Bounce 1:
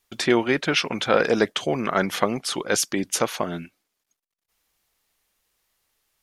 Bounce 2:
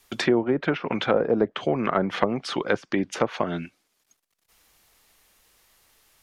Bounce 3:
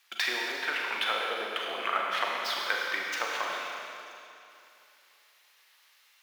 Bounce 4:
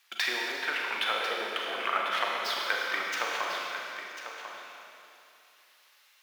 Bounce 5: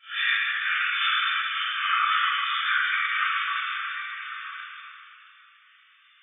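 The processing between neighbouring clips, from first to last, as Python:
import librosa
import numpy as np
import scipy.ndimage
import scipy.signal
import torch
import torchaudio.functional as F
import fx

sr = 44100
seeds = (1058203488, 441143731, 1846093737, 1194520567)

y1 = fx.env_lowpass_down(x, sr, base_hz=720.0, full_db=-16.5)
y1 = fx.band_squash(y1, sr, depth_pct=40)
y2 = scipy.signal.medfilt(y1, 5)
y2 = scipy.signal.sosfilt(scipy.signal.butter(2, 1400.0, 'highpass', fs=sr, output='sos'), y2)
y2 = fx.rev_schroeder(y2, sr, rt60_s=2.8, comb_ms=33, drr_db=-2.0)
y3 = y2 + 10.0 ** (-10.0 / 20.0) * np.pad(y2, (int(1045 * sr / 1000.0), 0))[:len(y2)]
y4 = fx.phase_scramble(y3, sr, seeds[0], window_ms=200)
y4 = fx.brickwall_bandpass(y4, sr, low_hz=1100.0, high_hz=3600.0)
y4 = fx.room_shoebox(y4, sr, seeds[1], volume_m3=1000.0, walls='furnished', distance_m=6.0)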